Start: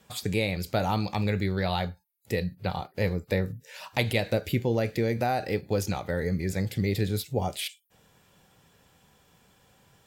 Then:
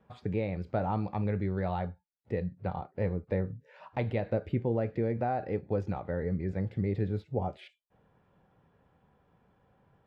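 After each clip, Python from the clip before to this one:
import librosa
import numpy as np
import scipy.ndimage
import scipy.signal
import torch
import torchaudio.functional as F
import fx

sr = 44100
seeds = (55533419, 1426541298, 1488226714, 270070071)

y = scipy.signal.sosfilt(scipy.signal.butter(2, 1300.0, 'lowpass', fs=sr, output='sos'), x)
y = y * 10.0 ** (-3.5 / 20.0)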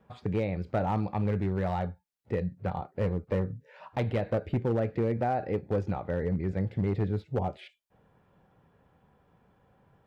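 y = np.clip(10.0 ** (24.0 / 20.0) * x, -1.0, 1.0) / 10.0 ** (24.0 / 20.0)
y = y * 10.0 ** (2.5 / 20.0)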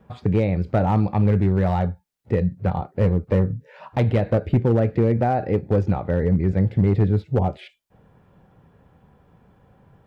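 y = fx.low_shelf(x, sr, hz=310.0, db=6.0)
y = y * 10.0 ** (6.0 / 20.0)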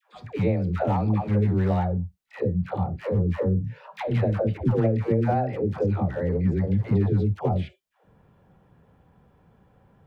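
y = fx.dispersion(x, sr, late='lows', ms=148.0, hz=530.0)
y = y * 10.0 ** (-3.5 / 20.0)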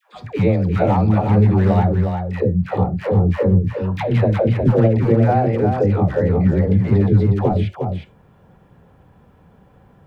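y = x + 10.0 ** (-6.0 / 20.0) * np.pad(x, (int(360 * sr / 1000.0), 0))[:len(x)]
y = y * 10.0 ** (7.0 / 20.0)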